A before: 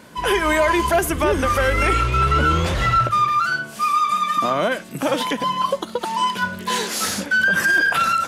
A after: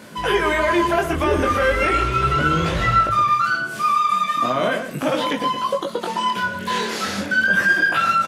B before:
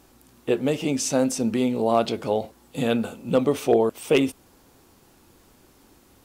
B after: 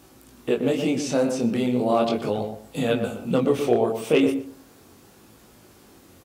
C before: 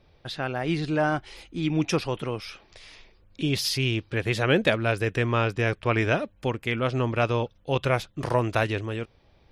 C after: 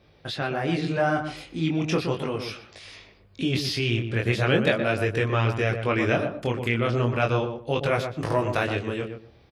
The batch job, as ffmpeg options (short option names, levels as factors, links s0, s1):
-filter_complex "[0:a]highpass=62,acrossover=split=4600[s0][s1];[s1]acompressor=threshold=0.01:ratio=4:attack=1:release=60[s2];[s0][s2]amix=inputs=2:normalize=0,equalizer=f=910:t=o:w=0.26:g=-3.5,asplit=2[s3][s4];[s4]acompressor=threshold=0.0282:ratio=6,volume=1[s5];[s3][s5]amix=inputs=2:normalize=0,flanger=delay=18.5:depth=7.3:speed=0.37,asplit=2[s6][s7];[s7]adelay=121,lowpass=f=1300:p=1,volume=0.501,asplit=2[s8][s9];[s9]adelay=121,lowpass=f=1300:p=1,volume=0.22,asplit=2[s10][s11];[s11]adelay=121,lowpass=f=1300:p=1,volume=0.22[s12];[s6][s8][s10][s12]amix=inputs=4:normalize=0,volume=1.12"